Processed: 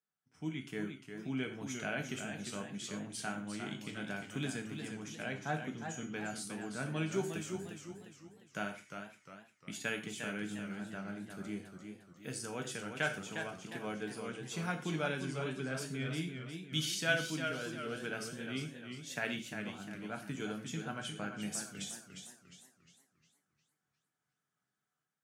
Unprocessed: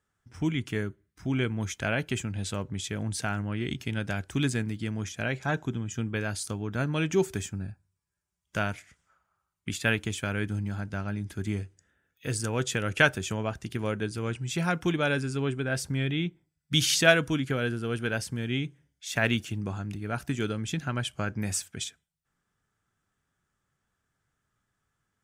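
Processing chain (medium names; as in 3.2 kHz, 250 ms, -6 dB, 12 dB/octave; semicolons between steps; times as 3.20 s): level rider gain up to 8 dB; high-pass 140 Hz 24 dB/octave; feedback comb 750 Hz, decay 0.28 s, mix 80%; gated-style reverb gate 150 ms falling, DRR 5 dB; modulated delay 354 ms, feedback 42%, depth 102 cents, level -7 dB; trim -5.5 dB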